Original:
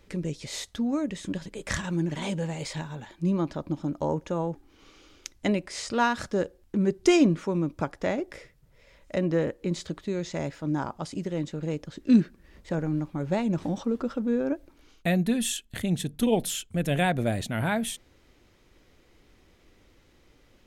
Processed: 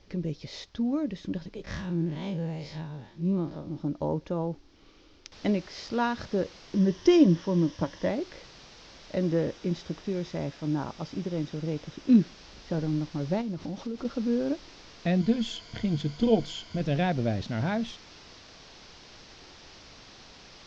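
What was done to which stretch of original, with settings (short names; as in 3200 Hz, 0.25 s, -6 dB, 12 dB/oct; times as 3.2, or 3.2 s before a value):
1.64–3.77 time blur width 82 ms
5.32 noise floor step -57 dB -41 dB
6.75–8.09 ripple EQ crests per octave 1.2, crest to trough 8 dB
9.23–12.21 notch 4300 Hz
13.41–14.05 compressor 3:1, threshold -31 dBFS
15.2–16.81 ripple EQ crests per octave 1.8, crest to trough 10 dB
whole clip: steep low-pass 5600 Hz 48 dB/oct; bell 2000 Hz -6.5 dB 2.9 oct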